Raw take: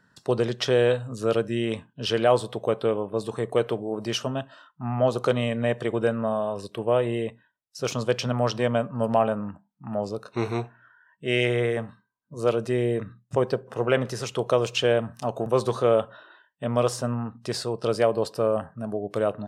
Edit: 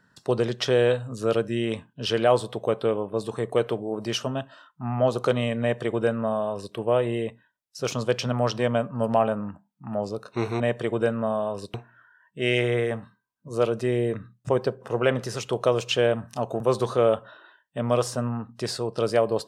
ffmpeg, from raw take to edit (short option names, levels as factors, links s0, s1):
-filter_complex "[0:a]asplit=3[s0][s1][s2];[s0]atrim=end=10.602[s3];[s1]atrim=start=5.608:end=6.752[s4];[s2]atrim=start=10.598[s5];[s3][s4]acrossfade=d=0.004:c1=hsin:c2=hsin[s6];[s6][s5]acrossfade=d=0.004:c1=hsin:c2=hsin"